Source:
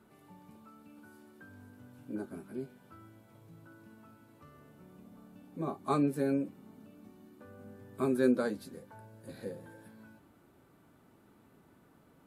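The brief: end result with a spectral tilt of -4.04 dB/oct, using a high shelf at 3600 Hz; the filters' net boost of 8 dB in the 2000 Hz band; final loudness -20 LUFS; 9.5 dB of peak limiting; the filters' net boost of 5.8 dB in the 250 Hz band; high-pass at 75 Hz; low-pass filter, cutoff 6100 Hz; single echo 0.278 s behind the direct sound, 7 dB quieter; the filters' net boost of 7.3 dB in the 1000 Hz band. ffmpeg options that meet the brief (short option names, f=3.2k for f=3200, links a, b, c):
-af "highpass=75,lowpass=6.1k,equalizer=f=250:t=o:g=6,equalizer=f=1k:t=o:g=6.5,equalizer=f=2k:t=o:g=9,highshelf=f=3.6k:g=-3.5,alimiter=limit=-21dB:level=0:latency=1,aecho=1:1:278:0.447,volume=14dB"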